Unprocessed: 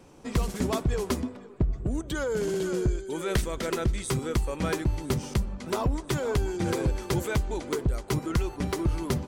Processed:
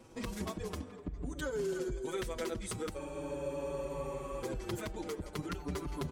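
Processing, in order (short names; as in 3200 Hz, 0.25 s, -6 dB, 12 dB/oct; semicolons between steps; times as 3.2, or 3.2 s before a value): de-hum 322.6 Hz, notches 33; compressor, threshold -31 dBFS, peak gain reduction 10.5 dB; granular stretch 0.66×, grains 0.11 s; tape echo 0.249 s, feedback 88%, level -19 dB, low-pass 2500 Hz; spectral freeze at 2.99, 1.44 s; endless flanger 5.7 ms -0.45 Hz; gain +1 dB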